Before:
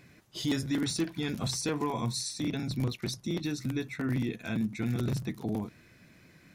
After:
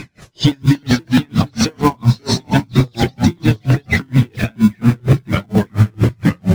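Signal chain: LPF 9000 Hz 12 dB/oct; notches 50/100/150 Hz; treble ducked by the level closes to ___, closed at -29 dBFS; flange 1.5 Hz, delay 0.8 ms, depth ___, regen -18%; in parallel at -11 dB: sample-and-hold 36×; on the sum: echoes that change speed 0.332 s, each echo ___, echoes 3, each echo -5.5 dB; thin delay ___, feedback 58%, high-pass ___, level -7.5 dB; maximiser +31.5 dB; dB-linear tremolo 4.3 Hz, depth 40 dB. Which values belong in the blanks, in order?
2400 Hz, 1.3 ms, -2 st, 0.158 s, 4900 Hz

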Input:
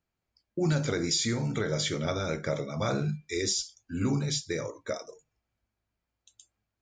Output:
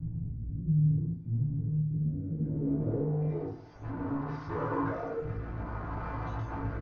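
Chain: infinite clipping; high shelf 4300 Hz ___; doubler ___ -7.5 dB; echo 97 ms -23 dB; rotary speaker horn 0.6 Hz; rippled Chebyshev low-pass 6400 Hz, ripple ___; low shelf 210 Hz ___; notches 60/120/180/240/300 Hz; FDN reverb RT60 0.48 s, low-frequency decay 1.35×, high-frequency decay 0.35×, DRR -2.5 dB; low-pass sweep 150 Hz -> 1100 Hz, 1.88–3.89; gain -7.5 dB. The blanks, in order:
+6 dB, 17 ms, 3 dB, +7 dB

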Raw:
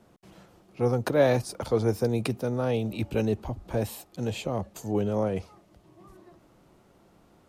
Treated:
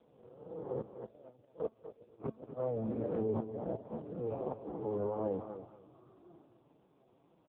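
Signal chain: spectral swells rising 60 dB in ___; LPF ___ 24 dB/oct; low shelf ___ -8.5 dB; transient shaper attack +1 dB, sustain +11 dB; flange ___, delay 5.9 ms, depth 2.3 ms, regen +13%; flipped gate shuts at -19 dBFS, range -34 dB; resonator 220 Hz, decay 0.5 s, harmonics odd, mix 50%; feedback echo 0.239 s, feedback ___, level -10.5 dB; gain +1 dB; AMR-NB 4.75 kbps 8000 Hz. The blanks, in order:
1.32 s, 1100 Hz, 120 Hz, 1.9 Hz, 22%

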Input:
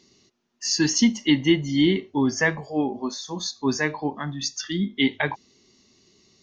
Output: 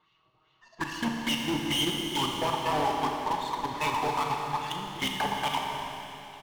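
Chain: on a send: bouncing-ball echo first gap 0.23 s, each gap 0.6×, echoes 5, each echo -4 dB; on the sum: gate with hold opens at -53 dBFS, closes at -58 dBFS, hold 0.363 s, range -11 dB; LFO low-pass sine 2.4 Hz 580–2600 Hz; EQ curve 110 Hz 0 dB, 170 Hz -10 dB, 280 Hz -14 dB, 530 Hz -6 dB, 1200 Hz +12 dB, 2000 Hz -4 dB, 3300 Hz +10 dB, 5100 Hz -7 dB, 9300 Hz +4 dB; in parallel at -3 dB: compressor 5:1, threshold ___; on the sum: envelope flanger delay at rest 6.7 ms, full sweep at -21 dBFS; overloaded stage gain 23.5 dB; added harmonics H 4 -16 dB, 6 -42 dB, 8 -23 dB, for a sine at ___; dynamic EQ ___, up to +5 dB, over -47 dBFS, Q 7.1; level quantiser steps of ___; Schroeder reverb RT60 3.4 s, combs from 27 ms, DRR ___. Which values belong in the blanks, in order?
-37 dBFS, -23.5 dBFS, 880 Hz, 14 dB, 1 dB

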